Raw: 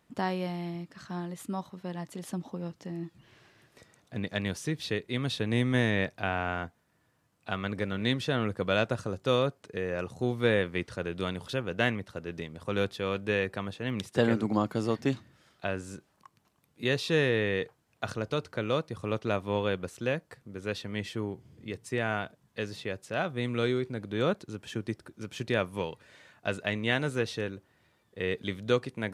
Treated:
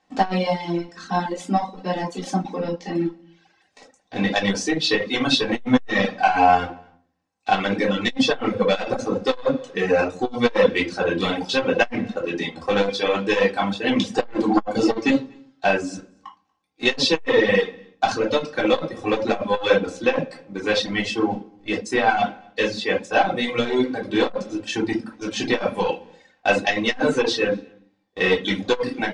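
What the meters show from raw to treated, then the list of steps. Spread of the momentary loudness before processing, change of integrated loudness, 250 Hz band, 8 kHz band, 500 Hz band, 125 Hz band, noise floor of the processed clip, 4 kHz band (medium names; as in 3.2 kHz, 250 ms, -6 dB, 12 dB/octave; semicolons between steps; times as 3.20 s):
12 LU, +9.5 dB, +9.5 dB, +11.5 dB, +9.5 dB, +0.5 dB, -64 dBFS, +11.5 dB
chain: graphic EQ with 31 bands 100 Hz -4 dB, 200 Hz +3 dB, 800 Hz +7 dB, 1.25 kHz -4 dB; waveshaping leveller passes 2; low-pass 6.6 kHz 24 dB/octave; comb 3.8 ms, depth 54%; delay 237 ms -20.5 dB; simulated room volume 420 m³, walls furnished, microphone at 3.5 m; reverb removal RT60 1.2 s; tone controls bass -10 dB, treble +3 dB; transformer saturation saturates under 460 Hz; trim +2.5 dB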